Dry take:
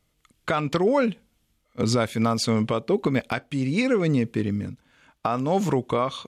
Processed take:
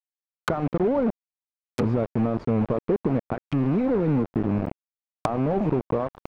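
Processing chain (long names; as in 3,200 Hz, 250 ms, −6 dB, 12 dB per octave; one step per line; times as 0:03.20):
loose part that buzzes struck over −29 dBFS, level −22 dBFS
downward compressor 2.5 to 1, threshold −29 dBFS, peak gain reduction 8.5 dB
bit reduction 5 bits
treble cut that deepens with the level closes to 740 Hz, closed at −30 dBFS
level +6.5 dB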